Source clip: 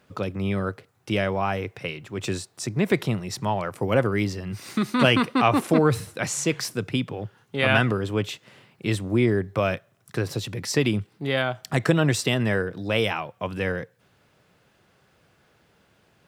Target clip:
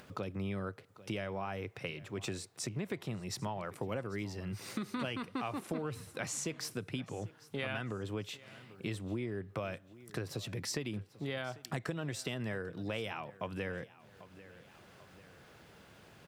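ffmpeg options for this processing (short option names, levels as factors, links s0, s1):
-af "acompressor=threshold=0.0355:ratio=6,aecho=1:1:794|1588:0.1|0.031,acompressor=mode=upward:threshold=0.00891:ratio=2.5,volume=0.501"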